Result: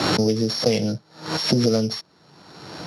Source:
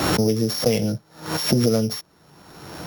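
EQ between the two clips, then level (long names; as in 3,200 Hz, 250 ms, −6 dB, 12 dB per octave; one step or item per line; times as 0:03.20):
high-pass filter 100 Hz
low-pass filter 6,800 Hz 12 dB per octave
parametric band 4,400 Hz +8.5 dB 0.38 octaves
0.0 dB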